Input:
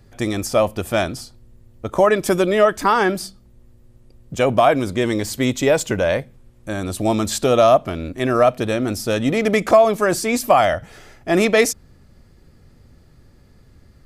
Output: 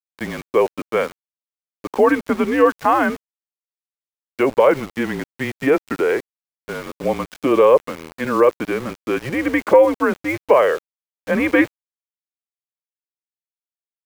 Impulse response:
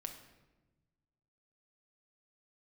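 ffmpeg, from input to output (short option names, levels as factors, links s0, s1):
-af "highpass=f=380:t=q:w=0.5412,highpass=f=380:t=q:w=1.307,lowpass=f=2800:t=q:w=0.5176,lowpass=f=2800:t=q:w=0.7071,lowpass=f=2800:t=q:w=1.932,afreqshift=-140,aeval=exprs='val(0)*gte(abs(val(0)),0.0266)':c=same,volume=1.12"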